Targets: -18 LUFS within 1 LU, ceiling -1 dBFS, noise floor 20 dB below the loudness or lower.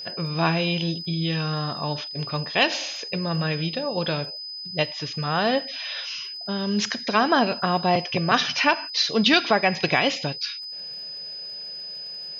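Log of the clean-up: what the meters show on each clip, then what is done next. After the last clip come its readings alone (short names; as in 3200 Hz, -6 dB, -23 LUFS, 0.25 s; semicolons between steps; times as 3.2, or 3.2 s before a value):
ticks 25/s; steady tone 5000 Hz; tone level -33 dBFS; loudness -24.0 LUFS; peak -5.0 dBFS; loudness target -18.0 LUFS
-> de-click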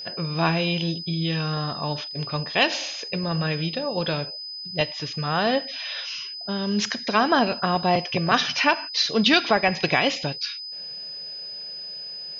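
ticks 0/s; steady tone 5000 Hz; tone level -33 dBFS
-> notch 5000 Hz, Q 30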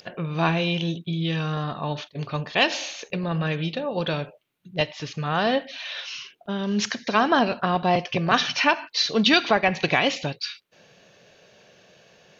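steady tone none; loudness -24.0 LUFS; peak -5.5 dBFS; loudness target -18.0 LUFS
-> gain +6 dB; limiter -1 dBFS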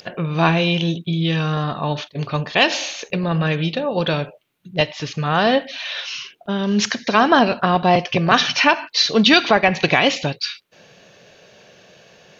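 loudness -18.5 LUFS; peak -1.0 dBFS; noise floor -52 dBFS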